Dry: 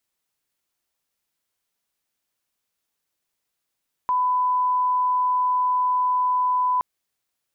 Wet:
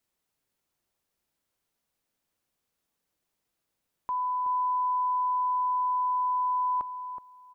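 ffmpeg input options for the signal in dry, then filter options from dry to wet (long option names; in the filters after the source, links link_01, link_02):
-f lavfi -i "sine=frequency=1000:duration=2.72:sample_rate=44100,volume=0.06dB"
-filter_complex "[0:a]tiltshelf=frequency=970:gain=3.5,alimiter=level_in=2dB:limit=-24dB:level=0:latency=1:release=56,volume=-2dB,asplit=2[link_01][link_02];[link_02]adelay=373,lowpass=frequency=840:poles=1,volume=-5.5dB,asplit=2[link_03][link_04];[link_04]adelay=373,lowpass=frequency=840:poles=1,volume=0.28,asplit=2[link_05][link_06];[link_06]adelay=373,lowpass=frequency=840:poles=1,volume=0.28,asplit=2[link_07][link_08];[link_08]adelay=373,lowpass=frequency=840:poles=1,volume=0.28[link_09];[link_03][link_05][link_07][link_09]amix=inputs=4:normalize=0[link_10];[link_01][link_10]amix=inputs=2:normalize=0"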